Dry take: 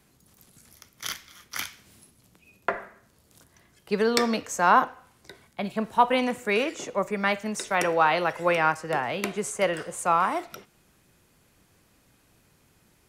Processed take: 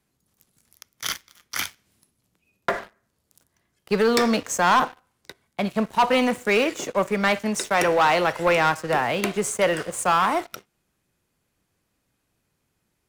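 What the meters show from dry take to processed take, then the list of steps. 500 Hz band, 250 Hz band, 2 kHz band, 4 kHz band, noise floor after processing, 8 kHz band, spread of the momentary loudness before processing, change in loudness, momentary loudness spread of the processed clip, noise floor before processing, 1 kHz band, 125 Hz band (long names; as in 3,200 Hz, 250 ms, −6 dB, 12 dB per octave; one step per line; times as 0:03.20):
+4.0 dB, +4.5 dB, +3.5 dB, +5.0 dB, −75 dBFS, +5.0 dB, 13 LU, +3.5 dB, 11 LU, −63 dBFS, +2.0 dB, +5.0 dB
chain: leveller curve on the samples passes 3
level −5.5 dB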